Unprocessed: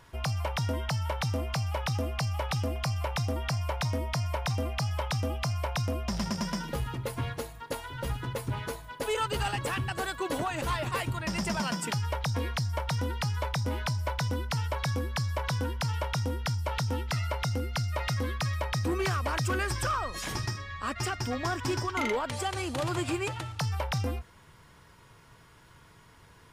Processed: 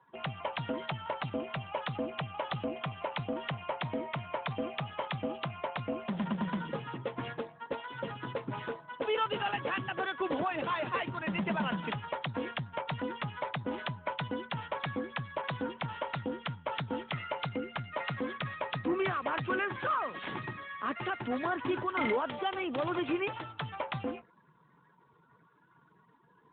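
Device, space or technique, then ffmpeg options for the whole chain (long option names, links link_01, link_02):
mobile call with aggressive noise cancelling: -af "highpass=frequency=160:width=0.5412,highpass=frequency=160:width=1.3066,afftdn=noise_reduction=30:noise_floor=-53" -ar 8000 -c:a libopencore_amrnb -b:a 12200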